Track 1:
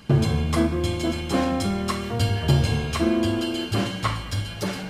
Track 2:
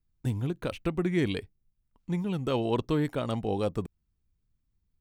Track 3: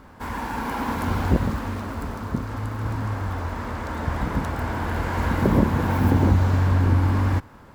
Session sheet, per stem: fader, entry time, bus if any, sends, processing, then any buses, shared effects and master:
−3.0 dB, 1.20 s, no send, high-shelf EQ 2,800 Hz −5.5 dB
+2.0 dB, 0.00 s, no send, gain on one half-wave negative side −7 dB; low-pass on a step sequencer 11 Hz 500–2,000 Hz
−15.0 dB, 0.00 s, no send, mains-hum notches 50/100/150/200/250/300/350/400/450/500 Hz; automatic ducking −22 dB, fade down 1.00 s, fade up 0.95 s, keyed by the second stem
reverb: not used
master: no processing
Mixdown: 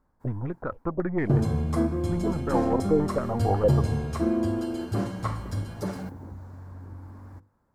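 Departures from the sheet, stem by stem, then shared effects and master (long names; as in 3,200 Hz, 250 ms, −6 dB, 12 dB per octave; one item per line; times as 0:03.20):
stem 3 −15.0 dB → −22.5 dB
master: extra parametric band 2,900 Hz −14 dB 1.2 octaves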